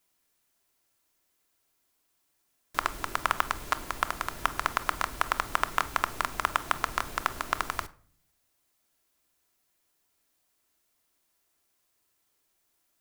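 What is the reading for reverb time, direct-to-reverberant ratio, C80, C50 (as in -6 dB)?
0.50 s, 10.0 dB, 23.5 dB, 19.5 dB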